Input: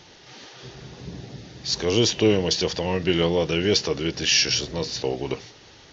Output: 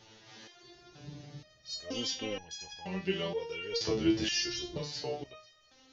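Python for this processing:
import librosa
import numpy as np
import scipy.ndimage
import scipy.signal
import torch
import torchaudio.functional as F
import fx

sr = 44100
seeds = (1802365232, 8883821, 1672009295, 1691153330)

y = fx.low_shelf(x, sr, hz=260.0, db=11.5, at=(3.88, 4.78))
y = fx.resonator_held(y, sr, hz=2.1, low_hz=110.0, high_hz=830.0)
y = y * librosa.db_to_amplitude(2.0)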